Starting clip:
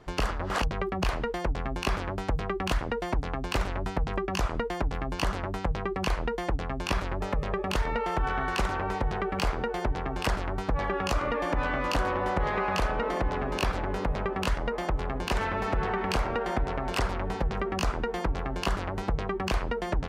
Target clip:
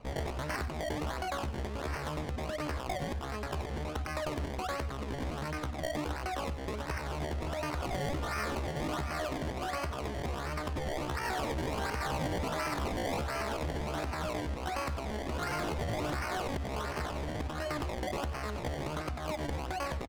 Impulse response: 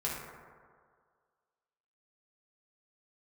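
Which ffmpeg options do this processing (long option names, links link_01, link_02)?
-filter_complex "[0:a]bandreject=frequency=60:width_type=h:width=6,bandreject=frequency=120:width_type=h:width=6,bandreject=frequency=180:width_type=h:width=6,acrossover=split=410[link_01][link_02];[link_01]acompressor=threshold=-33dB:ratio=20[link_03];[link_02]alimiter=limit=-24dB:level=0:latency=1:release=109[link_04];[link_03][link_04]amix=inputs=2:normalize=0,acrusher=samples=37:mix=1:aa=0.000001:lfo=1:lforange=37:lforate=1.4,adynamicsmooth=sensitivity=4:basefreq=3000,asoftclip=type=tanh:threshold=-26dB,asetrate=70004,aresample=44100,atempo=0.629961,asplit=2[link_05][link_06];[link_06]aecho=0:1:94:0.211[link_07];[link_05][link_07]amix=inputs=2:normalize=0"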